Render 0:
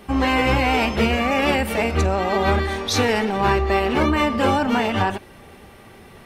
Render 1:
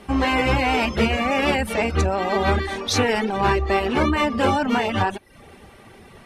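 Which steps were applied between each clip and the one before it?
low-pass filter 12,000 Hz 24 dB per octave
reverb reduction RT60 0.51 s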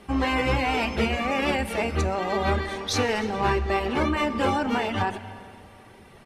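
single-tap delay 298 ms −21.5 dB
convolution reverb RT60 2.5 s, pre-delay 3 ms, DRR 12 dB
level −4.5 dB

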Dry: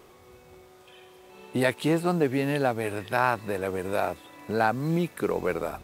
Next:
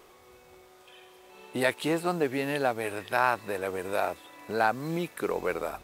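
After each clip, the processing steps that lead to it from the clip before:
parametric band 120 Hz −9 dB 2.7 octaves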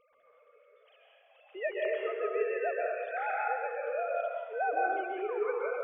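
three sine waves on the formant tracks
dense smooth reverb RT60 1.6 s, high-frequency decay 0.7×, pre-delay 115 ms, DRR −3.5 dB
level −8.5 dB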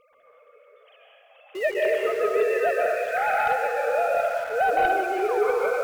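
in parallel at −11 dB: bit reduction 7 bits
on the sum: sine wavefolder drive 4 dB, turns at −15 dBFS
echo through a band-pass that steps 539 ms, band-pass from 1,000 Hz, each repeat 0.7 octaves, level −7.5 dB

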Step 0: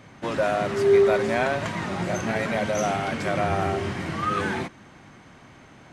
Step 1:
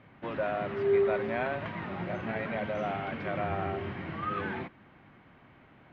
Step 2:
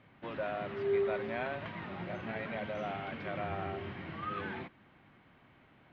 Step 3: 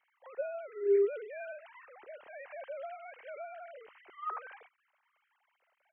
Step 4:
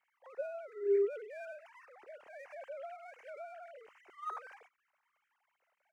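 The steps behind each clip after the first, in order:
low-pass filter 3,100 Hz 24 dB per octave; level −8 dB
parametric band 3,700 Hz +4.5 dB 1.2 octaves; level −5.5 dB
three sine waves on the formant tracks
running median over 9 samples; level −3 dB

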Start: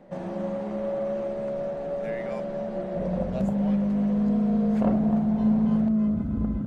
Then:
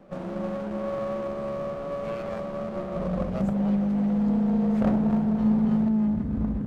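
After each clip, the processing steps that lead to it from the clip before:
windowed peak hold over 17 samples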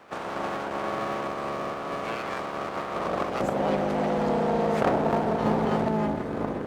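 ceiling on every frequency bin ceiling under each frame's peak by 19 dB
high-pass filter 330 Hz 6 dB per octave
level +2 dB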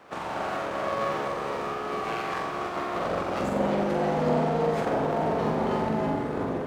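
brickwall limiter −17.5 dBFS, peak gain reduction 9.5 dB
on a send: flutter between parallel walls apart 7.7 metres, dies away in 0.65 s
on the sum: level −1 dB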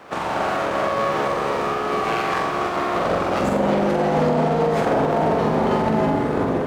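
brickwall limiter −19 dBFS, peak gain reduction 6 dB
level +8.5 dB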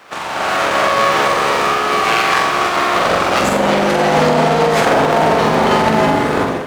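tilt shelving filter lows −6.5 dB, about 1,100 Hz
automatic gain control gain up to 10 dB
level +1 dB

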